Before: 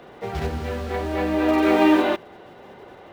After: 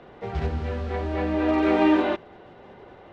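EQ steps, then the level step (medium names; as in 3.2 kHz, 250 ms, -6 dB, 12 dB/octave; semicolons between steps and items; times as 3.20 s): distance through air 110 m; bass shelf 92 Hz +8 dB; -3.0 dB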